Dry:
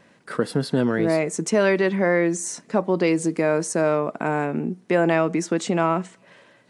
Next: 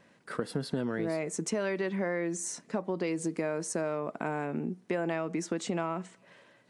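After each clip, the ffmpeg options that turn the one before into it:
ffmpeg -i in.wav -af "acompressor=threshold=-21dB:ratio=6,volume=-6.5dB" out.wav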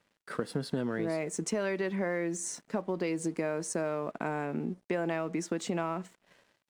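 ffmpeg -i in.wav -af "aeval=exprs='sgn(val(0))*max(abs(val(0))-0.00112,0)':channel_layout=same" out.wav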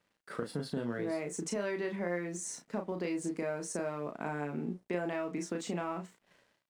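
ffmpeg -i in.wav -filter_complex "[0:a]asplit=2[link_01][link_02];[link_02]adelay=34,volume=-5dB[link_03];[link_01][link_03]amix=inputs=2:normalize=0,volume=-4.5dB" out.wav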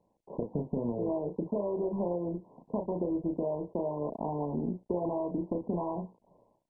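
ffmpeg -i in.wav -af "equalizer=frequency=7700:width_type=o:width=0.27:gain=4,acompressor=threshold=-37dB:ratio=2.5,volume=7.5dB" -ar 22050 -c:a mp2 -b:a 8k out.mp2

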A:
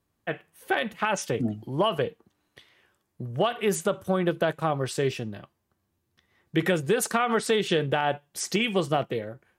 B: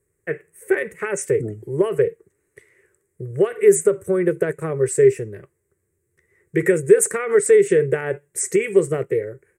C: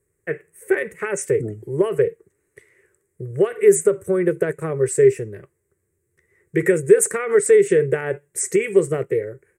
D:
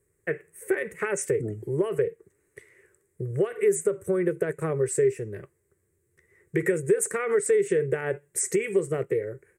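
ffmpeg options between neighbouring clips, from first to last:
ffmpeg -i in.wav -af "firequalizer=gain_entry='entry(160,0);entry(240,-15);entry(400,12);entry(720,-15);entry(2000,4);entry(3200,-22);entry(4900,-15);entry(8000,11);entry(12000,-1)':delay=0.05:min_phase=1,volume=3.5dB" out.wav
ffmpeg -i in.wav -af anull out.wav
ffmpeg -i in.wav -af "acompressor=threshold=-26dB:ratio=2" out.wav

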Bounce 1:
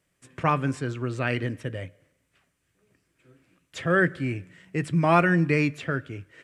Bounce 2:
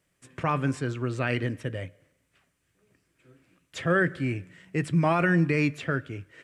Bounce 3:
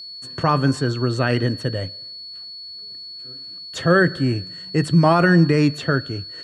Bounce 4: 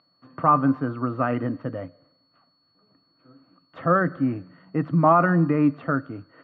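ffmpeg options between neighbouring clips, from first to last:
ffmpeg -i in.wav -af "alimiter=limit=-13.5dB:level=0:latency=1:release=23" out.wav
ffmpeg -i in.wav -af "equalizer=frequency=2300:width=4.3:gain=-14,aeval=exprs='val(0)+0.00794*sin(2*PI*4400*n/s)':channel_layout=same,volume=8.5dB" out.wav
ffmpeg -i in.wav -af "highpass=160,equalizer=frequency=280:width_type=q:width=4:gain=6,equalizer=frequency=390:width_type=q:width=4:gain=-10,equalizer=frequency=720:width_type=q:width=4:gain=4,equalizer=frequency=1200:width_type=q:width=4:gain=9,equalizer=frequency=1700:width_type=q:width=4:gain=-9,lowpass=frequency=2000:width=0.5412,lowpass=frequency=2000:width=1.3066,volume=-3.5dB" out.wav

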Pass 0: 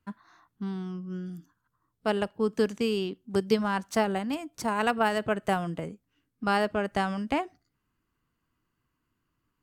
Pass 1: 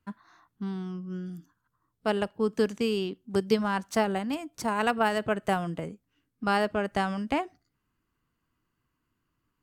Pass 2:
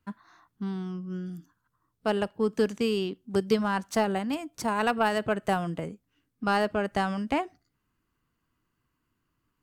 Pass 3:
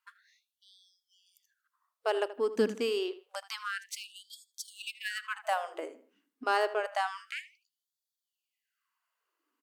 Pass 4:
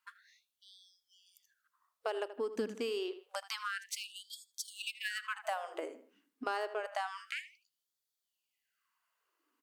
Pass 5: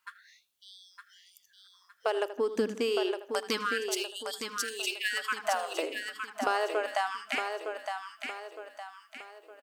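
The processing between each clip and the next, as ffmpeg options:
ffmpeg -i in.wav -af anull out.wav
ffmpeg -i in.wav -af "asoftclip=type=tanh:threshold=-11.5dB,volume=1dB" out.wav
ffmpeg -i in.wav -filter_complex "[0:a]asplit=2[link_01][link_02];[link_02]adelay=79,lowpass=frequency=3100:poles=1,volume=-14dB,asplit=2[link_03][link_04];[link_04]adelay=79,lowpass=frequency=3100:poles=1,volume=0.36,asplit=2[link_05][link_06];[link_06]adelay=79,lowpass=frequency=3100:poles=1,volume=0.36[link_07];[link_01][link_03][link_05][link_07]amix=inputs=4:normalize=0,afftfilt=real='re*gte(b*sr/1024,210*pow(3300/210,0.5+0.5*sin(2*PI*0.28*pts/sr)))':imag='im*gte(b*sr/1024,210*pow(3300/210,0.5+0.5*sin(2*PI*0.28*pts/sr)))':win_size=1024:overlap=0.75,volume=-2dB" out.wav
ffmpeg -i in.wav -af "acompressor=threshold=-37dB:ratio=3,volume=1.5dB" out.wav
ffmpeg -i in.wav -af "aecho=1:1:912|1824|2736|3648|4560:0.501|0.205|0.0842|0.0345|0.0142,volume=7dB" out.wav

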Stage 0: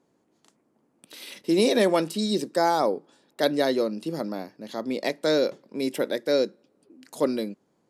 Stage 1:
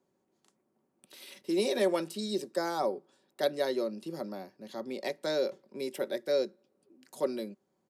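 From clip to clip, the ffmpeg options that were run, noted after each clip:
ffmpeg -i in.wav -filter_complex "[0:a]acrossover=split=250|1100[link_01][link_02][link_03];[link_01]alimiter=level_in=9.5dB:limit=-24dB:level=0:latency=1:release=403,volume=-9.5dB[link_04];[link_02]aecho=1:1:5.3:0.76[link_05];[link_03]highshelf=frequency=12000:gain=4.5[link_06];[link_04][link_05][link_06]amix=inputs=3:normalize=0,volume=-8.5dB" out.wav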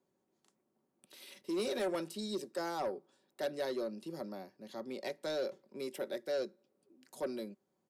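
ffmpeg -i in.wav -af "asoftclip=type=tanh:threshold=-25dB,volume=-4dB" out.wav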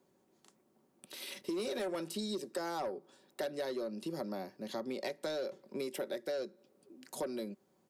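ffmpeg -i in.wav -af "acompressor=threshold=-44dB:ratio=6,volume=8.5dB" out.wav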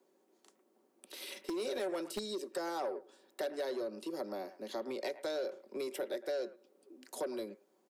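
ffmpeg -i in.wav -filter_complex "[0:a]acrossover=split=300|440|2400[link_01][link_02][link_03][link_04];[link_01]acrusher=bits=5:mix=0:aa=0.000001[link_05];[link_02]aeval=exprs='0.0178*sin(PI/2*1.58*val(0)/0.0178)':channel_layout=same[link_06];[link_03]aecho=1:1:110:0.282[link_07];[link_05][link_06][link_07][link_04]amix=inputs=4:normalize=0,volume=-1dB" out.wav

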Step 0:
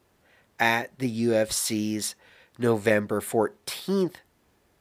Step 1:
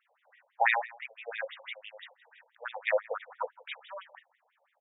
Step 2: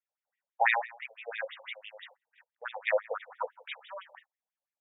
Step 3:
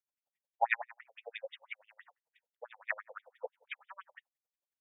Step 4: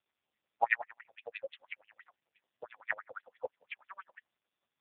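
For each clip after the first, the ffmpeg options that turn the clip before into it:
ffmpeg -i in.wav -filter_complex "[0:a]asplit=2[link_01][link_02];[link_02]adelay=169.1,volume=-21dB,highshelf=frequency=4000:gain=-3.8[link_03];[link_01][link_03]amix=inputs=2:normalize=0,afftfilt=real='re*between(b*sr/1024,630*pow(2700/630,0.5+0.5*sin(2*PI*6*pts/sr))/1.41,630*pow(2700/630,0.5+0.5*sin(2*PI*6*pts/sr))*1.41)':imag='im*between(b*sr/1024,630*pow(2700/630,0.5+0.5*sin(2*PI*6*pts/sr))/1.41,630*pow(2700/630,0.5+0.5*sin(2*PI*6*pts/sr))*1.41)':win_size=1024:overlap=0.75,volume=1.5dB" out.wav
ffmpeg -i in.wav -af "agate=range=-27dB:threshold=-56dB:ratio=16:detection=peak" out.wav
ffmpeg -i in.wav -af "aeval=exprs='val(0)*pow(10,-37*(0.5-0.5*cos(2*PI*11*n/s))/20)':channel_layout=same,volume=1dB" out.wav
ffmpeg -i in.wav -af "volume=3.5dB" -ar 8000 -c:a libopencore_amrnb -b:a 5150 out.amr

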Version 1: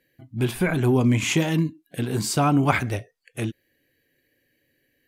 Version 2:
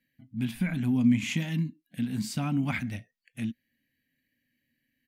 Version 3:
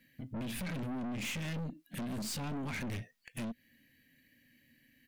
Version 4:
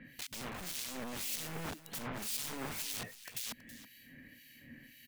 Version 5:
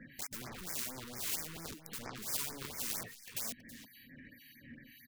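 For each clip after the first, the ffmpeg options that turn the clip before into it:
ffmpeg -i in.wav -af "firequalizer=gain_entry='entry(130,0);entry(230,11);entry(370,-16);entry(630,-7);entry(1200,-8);entry(1900,2);entry(8000,-4);entry(15000,-1)':delay=0.05:min_phase=1,volume=-9dB" out.wav
ffmpeg -i in.wav -af "alimiter=limit=-24dB:level=0:latency=1:release=137,acompressor=threshold=-36dB:ratio=12,aeval=exprs='(tanh(251*val(0)+0.3)-tanh(0.3))/251':channel_layout=same,volume=11.5dB" out.wav
ffmpeg -i in.wav -filter_complex "[0:a]aeval=exprs='(mod(188*val(0)+1,2)-1)/188':channel_layout=same,acrossover=split=2300[link_01][link_02];[link_01]aeval=exprs='val(0)*(1-1/2+1/2*cos(2*PI*1.9*n/s))':channel_layout=same[link_03];[link_02]aeval=exprs='val(0)*(1-1/2-1/2*cos(2*PI*1.9*n/s))':channel_layout=same[link_04];[link_03][link_04]amix=inputs=2:normalize=0,aecho=1:1:325:0.178,volume=15.5dB" out.wav
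ffmpeg -i in.wav -af "afftfilt=real='re*gte(hypot(re,im),0.000708)':imag='im*gte(hypot(re,im),0.000708)':win_size=1024:overlap=0.75,aeval=exprs='0.0596*(cos(1*acos(clip(val(0)/0.0596,-1,1)))-cos(1*PI/2))+0.0168*(cos(7*acos(clip(val(0)/0.0596,-1,1)))-cos(7*PI/2))':channel_layout=same,afftfilt=real='re*(1-between(b*sr/1024,620*pow(3500/620,0.5+0.5*sin(2*PI*4.4*pts/sr))/1.41,620*pow(3500/620,0.5+0.5*sin(2*PI*4.4*pts/sr))*1.41))':imag='im*(1-between(b*sr/1024,620*pow(3500/620,0.5+0.5*sin(2*PI*4.4*pts/sr))/1.41,620*pow(3500/620,0.5+0.5*sin(2*PI*4.4*pts/sr))*1.41))':win_size=1024:overlap=0.75,volume=2dB" out.wav

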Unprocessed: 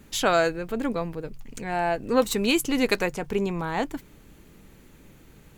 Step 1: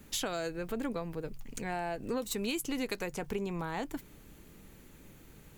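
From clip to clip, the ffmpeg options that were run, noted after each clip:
ffmpeg -i in.wav -filter_complex "[0:a]acrossover=split=500|3000[link_01][link_02][link_03];[link_02]acompressor=threshold=-26dB:ratio=6[link_04];[link_01][link_04][link_03]amix=inputs=3:normalize=0,highshelf=frequency=8000:gain=5.5,acompressor=threshold=-28dB:ratio=6,volume=-3.5dB" out.wav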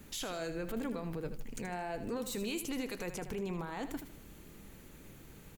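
ffmpeg -i in.wav -af "alimiter=level_in=7.5dB:limit=-24dB:level=0:latency=1:release=13,volume=-7.5dB,aecho=1:1:78|156|234|312:0.299|0.116|0.0454|0.0177,volume=1dB" out.wav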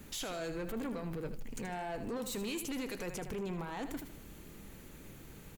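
ffmpeg -i in.wav -af "asoftclip=type=tanh:threshold=-35dB,volume=2dB" out.wav

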